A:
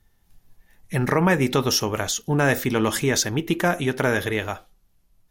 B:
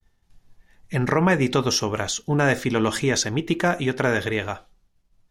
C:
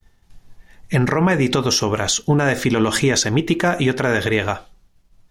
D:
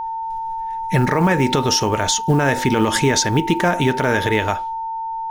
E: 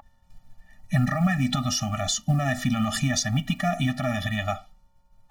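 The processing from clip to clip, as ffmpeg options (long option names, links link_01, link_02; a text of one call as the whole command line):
ffmpeg -i in.wav -af "agate=range=-33dB:threshold=-57dB:ratio=3:detection=peak,lowpass=7600" out.wav
ffmpeg -i in.wav -af "alimiter=limit=-16.5dB:level=0:latency=1:release=102,volume=9dB" out.wav
ffmpeg -i in.wav -af "acrusher=bits=8:mode=log:mix=0:aa=0.000001,aeval=exprs='val(0)+0.0708*sin(2*PI*900*n/s)':channel_layout=same" out.wav
ffmpeg -i in.wav -af "afftfilt=real='re*eq(mod(floor(b*sr/1024/280),2),0)':imag='im*eq(mod(floor(b*sr/1024/280),2),0)':win_size=1024:overlap=0.75,volume=-4dB" out.wav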